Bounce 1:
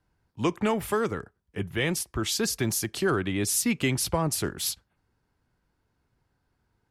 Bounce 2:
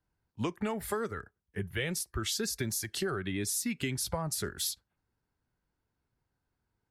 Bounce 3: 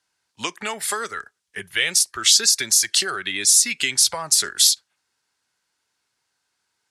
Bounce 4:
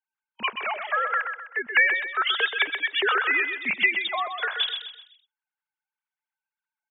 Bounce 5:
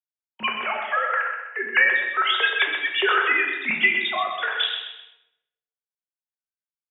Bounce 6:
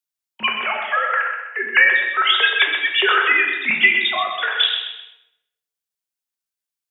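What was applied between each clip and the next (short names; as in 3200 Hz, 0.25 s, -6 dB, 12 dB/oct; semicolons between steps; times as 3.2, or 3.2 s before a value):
spectral noise reduction 9 dB; compressor, threshold -30 dBFS, peak gain reduction 9.5 dB
weighting filter ITU-R 468; gain +8.5 dB
sine-wave speech; gate -48 dBFS, range -15 dB; on a send: feedback echo 0.128 s, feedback 38%, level -7 dB; on the sum: gain -5.5 dB
gate with hold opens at -42 dBFS; shoebox room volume 250 m³, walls mixed, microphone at 1 m
high shelf 2400 Hz +8 dB; gain +1.5 dB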